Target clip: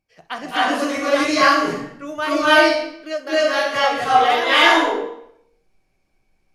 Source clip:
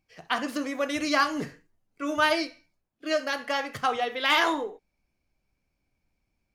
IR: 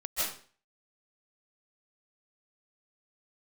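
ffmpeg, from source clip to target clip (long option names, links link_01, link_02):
-filter_complex "[0:a]equalizer=frequency=600:width=1.5:gain=3.5[link_01];[1:a]atrim=start_sample=2205,asetrate=26019,aresample=44100[link_02];[link_01][link_02]afir=irnorm=-1:irlink=0,volume=-2dB"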